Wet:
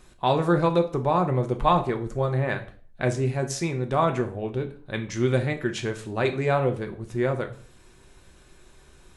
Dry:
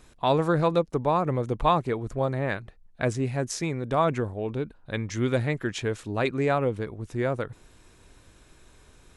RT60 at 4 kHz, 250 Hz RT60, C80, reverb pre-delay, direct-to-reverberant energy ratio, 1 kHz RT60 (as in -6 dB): 0.35 s, 0.50 s, 17.5 dB, 3 ms, 4.5 dB, 0.40 s